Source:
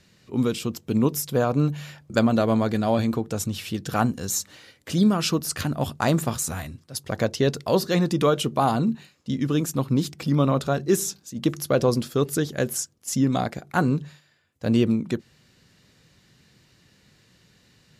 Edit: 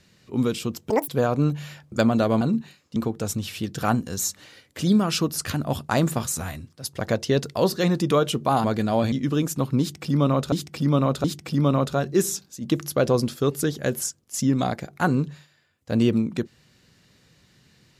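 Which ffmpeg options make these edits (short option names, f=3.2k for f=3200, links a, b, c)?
-filter_complex "[0:a]asplit=9[a][b][c][d][e][f][g][h][i];[a]atrim=end=0.904[j];[b]atrim=start=0.9:end=1.26,asetpts=PTS-STARTPTS,asetrate=87759,aresample=44100[k];[c]atrim=start=1.256:end=2.592[l];[d]atrim=start=8.748:end=9.302[m];[e]atrim=start=3.068:end=8.752[n];[f]atrim=start=2.588:end=3.072[o];[g]atrim=start=9.298:end=10.702[p];[h]atrim=start=9.978:end=10.702[q];[i]atrim=start=9.978[r];[j][k]acrossfade=d=0.004:c1=hsin:c2=hsin[s];[s][l]acrossfade=d=0.004:c1=hsin:c2=hsin[t];[t][m]acrossfade=d=0.004:c1=hsin:c2=hsin[u];[u][n]acrossfade=d=0.004:c1=hsin:c2=hsin[v];[v][o]acrossfade=d=0.004:c1=hsin:c2=hsin[w];[w][p]acrossfade=d=0.004:c1=hsin:c2=hsin[x];[x][q]acrossfade=d=0.004:c1=hsin:c2=hsin[y];[y][r]acrossfade=d=0.004:c1=hsin:c2=hsin"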